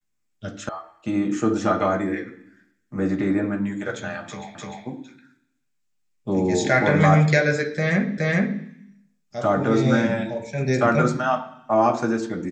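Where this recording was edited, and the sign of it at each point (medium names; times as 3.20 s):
0.69 s: sound stops dead
4.55 s: repeat of the last 0.3 s
8.18 s: repeat of the last 0.42 s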